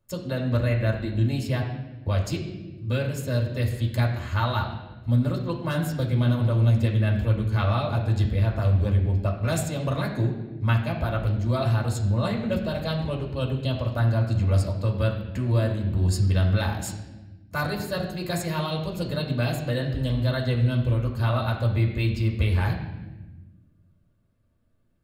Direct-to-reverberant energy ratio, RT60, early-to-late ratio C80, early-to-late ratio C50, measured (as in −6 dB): −1.5 dB, 1.1 s, 8.5 dB, 6.0 dB